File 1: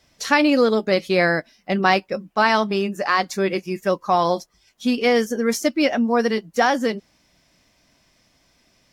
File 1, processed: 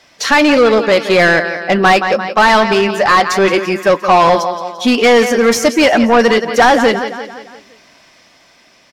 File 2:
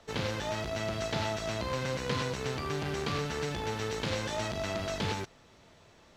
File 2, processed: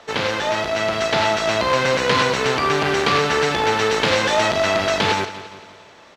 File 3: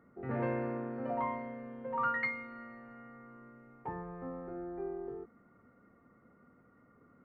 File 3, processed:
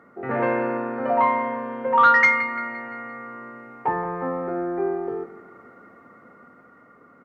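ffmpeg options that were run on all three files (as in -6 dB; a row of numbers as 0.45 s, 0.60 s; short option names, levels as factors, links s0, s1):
-filter_complex "[0:a]dynaudnorm=f=370:g=7:m=1.58,aecho=1:1:172|344|516|688|860:0.188|0.0923|0.0452|0.0222|0.0109,asplit=2[s0][s1];[s1]highpass=f=720:p=1,volume=11.2,asoftclip=type=tanh:threshold=0.794[s2];[s0][s2]amix=inputs=2:normalize=0,lowpass=f=2900:p=1,volume=0.501,volume=1.19"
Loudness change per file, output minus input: +9.0 LU, +15.0 LU, +16.0 LU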